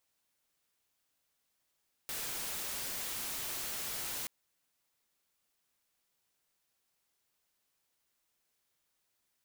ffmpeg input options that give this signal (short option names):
-f lavfi -i "anoisesrc=c=white:a=0.0194:d=2.18:r=44100:seed=1"